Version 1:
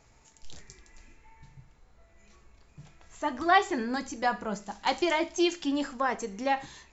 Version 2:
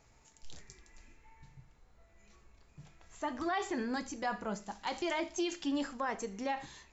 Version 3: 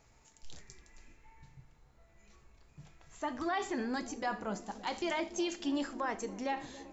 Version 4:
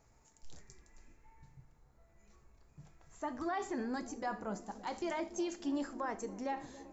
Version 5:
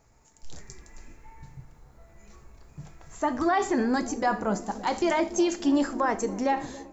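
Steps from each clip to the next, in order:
limiter -21.5 dBFS, peak gain reduction 11.5 dB; gain -4 dB
dark delay 0.283 s, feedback 77%, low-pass 670 Hz, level -15.5 dB
bell 3100 Hz -8.5 dB 1.3 oct; gain -2 dB
AGC gain up to 8 dB; gain +5 dB

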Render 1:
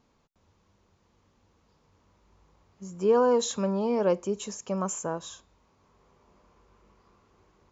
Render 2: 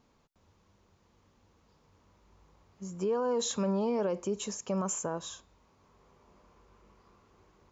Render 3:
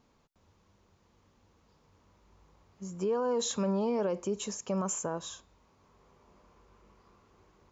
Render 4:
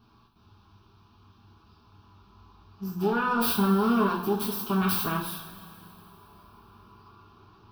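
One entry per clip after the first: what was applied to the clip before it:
limiter -23.5 dBFS, peak gain reduction 10 dB
nothing audible
self-modulated delay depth 0.29 ms; fixed phaser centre 2000 Hz, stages 6; two-slope reverb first 0.43 s, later 3 s, from -18 dB, DRR -5 dB; gain +5.5 dB

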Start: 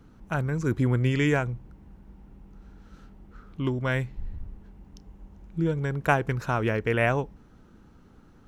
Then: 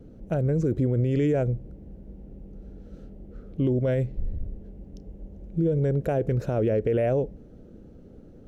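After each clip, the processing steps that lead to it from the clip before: resonant low shelf 750 Hz +10.5 dB, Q 3; limiter -12 dBFS, peak gain reduction 12 dB; gain -5 dB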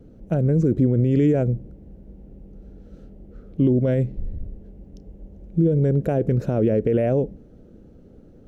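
dynamic EQ 220 Hz, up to +8 dB, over -38 dBFS, Q 0.82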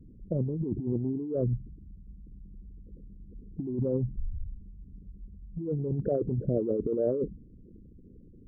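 formant sharpening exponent 3; negative-ratio compressor -21 dBFS, ratio -0.5; gain -7 dB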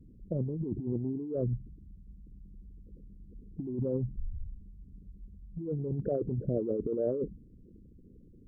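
gain -3 dB; Opus 128 kbps 48000 Hz

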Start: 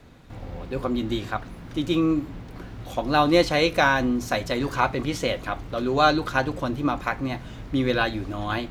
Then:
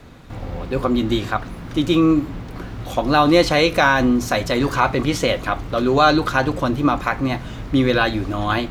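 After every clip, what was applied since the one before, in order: bell 1200 Hz +2.5 dB 0.34 oct; in parallel at +2 dB: limiter -14.5 dBFS, peak gain reduction 10.5 dB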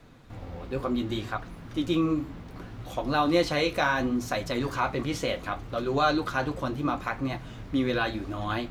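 flange 0.68 Hz, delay 5.7 ms, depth 10 ms, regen -46%; gain -6 dB

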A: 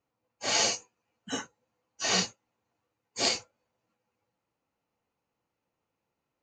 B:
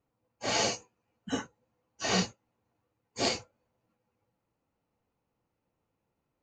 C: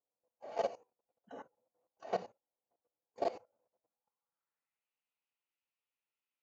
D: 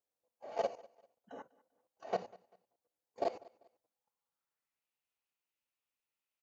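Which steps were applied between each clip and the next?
tilt -2 dB/oct
band-pass sweep 620 Hz -> 2800 Hz, 3.8–4.91; level quantiser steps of 17 dB; gain +3.5 dB
feedback echo 0.196 s, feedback 33%, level -23 dB

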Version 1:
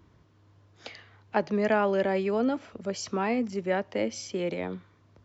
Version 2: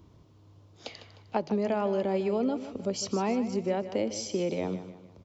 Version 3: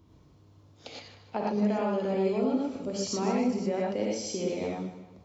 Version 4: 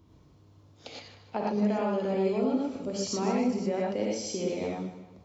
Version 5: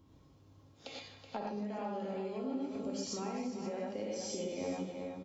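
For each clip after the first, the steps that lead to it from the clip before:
bell 1700 Hz -11.5 dB 0.88 oct; compressor, threshold -28 dBFS, peak gain reduction 8 dB; feedback echo 0.153 s, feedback 42%, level -12.5 dB; gain +3.5 dB
non-linear reverb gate 0.14 s rising, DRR -3 dB; gain -4.5 dB
nothing audible
echo 0.376 s -10 dB; compressor, threshold -32 dBFS, peak gain reduction 10 dB; resonator 270 Hz, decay 0.37 s, harmonics all, mix 80%; gain +8 dB

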